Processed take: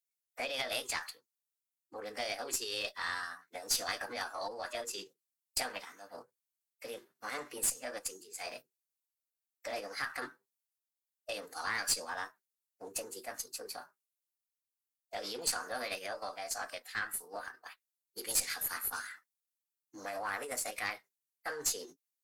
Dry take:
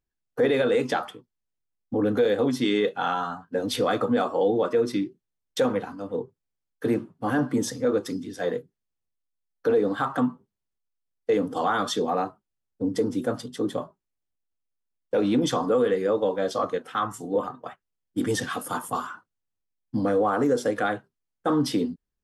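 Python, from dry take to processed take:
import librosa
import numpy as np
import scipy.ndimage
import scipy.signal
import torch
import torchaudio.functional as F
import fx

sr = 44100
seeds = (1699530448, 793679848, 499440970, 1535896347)

y = fx.formant_shift(x, sr, semitones=5)
y = np.diff(y, prepend=0.0)
y = fx.cheby_harmonics(y, sr, harmonics=(5, 6, 8), levels_db=(-22, -18, -30), full_scale_db=-17.5)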